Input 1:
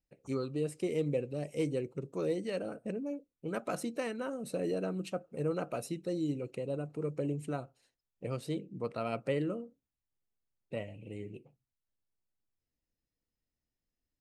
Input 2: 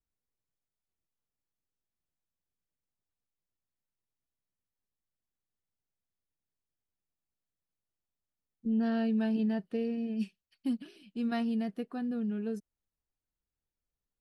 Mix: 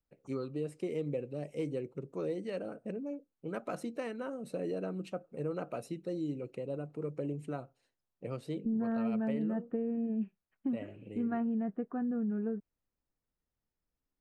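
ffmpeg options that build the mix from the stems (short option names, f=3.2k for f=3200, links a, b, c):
-filter_complex "[0:a]highpass=110,highshelf=f=3.6k:g=-9,volume=-1.5dB[a];[1:a]lowpass=f=1.6k:w=0.5412,lowpass=f=1.6k:w=1.3066,volume=2dB[b];[a][b]amix=inputs=2:normalize=0,acompressor=threshold=-30dB:ratio=6"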